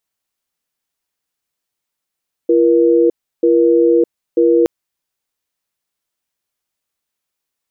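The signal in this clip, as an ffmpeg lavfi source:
-f lavfi -i "aevalsrc='0.282*(sin(2*PI*340*t)+sin(2*PI*476*t))*clip(min(mod(t,0.94),0.61-mod(t,0.94))/0.005,0,1)':d=2.17:s=44100"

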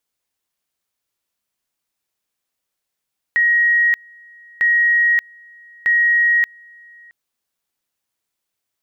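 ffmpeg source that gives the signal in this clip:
-f lavfi -i "aevalsrc='pow(10,(-11.5-29.5*gte(mod(t,1.25),0.58))/20)*sin(2*PI*1890*t)':d=3.75:s=44100"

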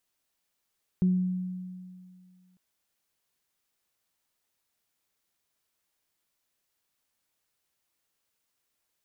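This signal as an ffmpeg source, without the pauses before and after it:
-f lavfi -i "aevalsrc='0.112*pow(10,-3*t/2.17)*sin(2*PI*183*t)+0.015*pow(10,-3*t/0.5)*sin(2*PI*366*t)':d=1.55:s=44100"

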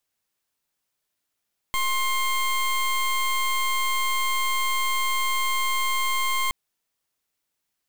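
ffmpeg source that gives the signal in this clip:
-f lavfi -i "aevalsrc='0.0668*(2*lt(mod(1060*t,1),0.2)-1)':d=4.77:s=44100"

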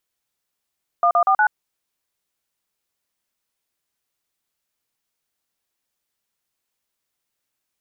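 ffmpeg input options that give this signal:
-f lavfi -i "aevalsrc='0.168*clip(min(mod(t,0.12),0.079-mod(t,0.12))/0.002,0,1)*(eq(floor(t/0.12),0)*(sin(2*PI*697*mod(t,0.12))+sin(2*PI*1209*mod(t,0.12)))+eq(floor(t/0.12),1)*(sin(2*PI*697*mod(t,0.12))+sin(2*PI*1209*mod(t,0.12)))+eq(floor(t/0.12),2)*(sin(2*PI*770*mod(t,0.12))+sin(2*PI*1209*mod(t,0.12)))+eq(floor(t/0.12),3)*(sin(2*PI*852*mod(t,0.12))+sin(2*PI*1477*mod(t,0.12))))':d=0.48:s=44100"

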